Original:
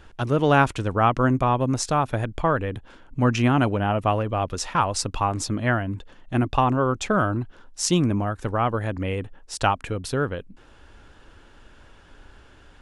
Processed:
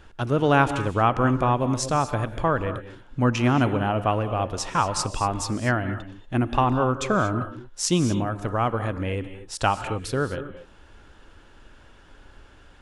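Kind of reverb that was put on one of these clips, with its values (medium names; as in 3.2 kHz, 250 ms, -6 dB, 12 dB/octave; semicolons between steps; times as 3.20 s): gated-style reverb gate 260 ms rising, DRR 10.5 dB; trim -1 dB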